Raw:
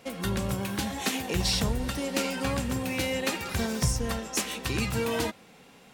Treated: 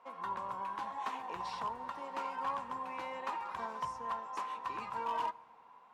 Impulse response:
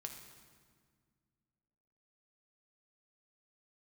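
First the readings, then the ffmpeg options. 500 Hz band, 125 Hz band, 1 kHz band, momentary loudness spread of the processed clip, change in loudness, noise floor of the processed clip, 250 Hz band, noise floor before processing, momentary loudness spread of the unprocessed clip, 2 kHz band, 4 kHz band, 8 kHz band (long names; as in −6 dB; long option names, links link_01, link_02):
−14.5 dB, −29.5 dB, +2.0 dB, 4 LU, −10.5 dB, −60 dBFS, −22.5 dB, −54 dBFS, 4 LU, −13.5 dB, −21.0 dB, −28.0 dB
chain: -filter_complex "[0:a]bandpass=frequency=1000:width_type=q:width=9.9:csg=0,asoftclip=type=hard:threshold=-39dB,asplit=2[link_01][link_02];[1:a]atrim=start_sample=2205,adelay=12[link_03];[link_02][link_03]afir=irnorm=-1:irlink=0,volume=-12.5dB[link_04];[link_01][link_04]amix=inputs=2:normalize=0,volume=9dB"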